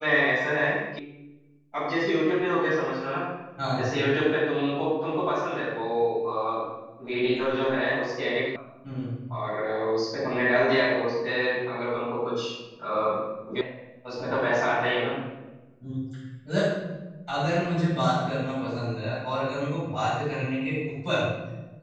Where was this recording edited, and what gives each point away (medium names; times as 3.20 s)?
0.99 s: sound stops dead
8.56 s: sound stops dead
13.61 s: sound stops dead